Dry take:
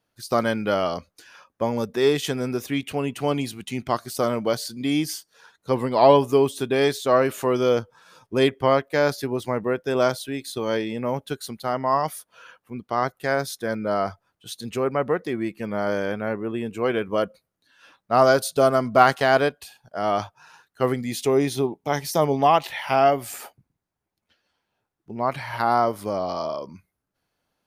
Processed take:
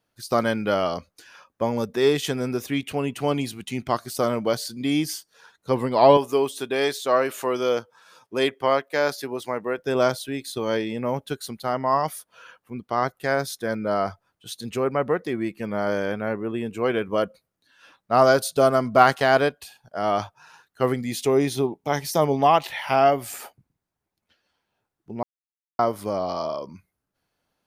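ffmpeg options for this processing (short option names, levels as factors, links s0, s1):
-filter_complex "[0:a]asettb=1/sr,asplit=3[s0][s1][s2];[s0]atrim=end=6.174[s3];[s1]atrim=start=6.17:end=9.79,asetpts=PTS-STARTPTS,afade=t=in:d=0.004:c=qsin,afade=t=out:st=3.616:d=0.004:c=qsin,highpass=f=440:p=1[s4];[s2]atrim=start=9.786[s5];[s3][s4]acrossfade=d=0.004:c1=hsin:c2=qsin[s6];[s6][s5]acrossfade=d=0.004:c1=qsin:c2=hsin,asplit=3[s7][s8][s9];[s7]atrim=end=25.23,asetpts=PTS-STARTPTS,afade=t=out:st=25.226:d=0.004:c=hsin[s10];[s8]atrim=start=25.23:end=25.79,asetpts=PTS-STARTPTS,volume=0[s11];[s9]atrim=start=25.79,asetpts=PTS-STARTPTS,afade=t=in:d=0.004:c=hsin[s12];[s10][s11][s12]concat=n=3:v=0:a=1"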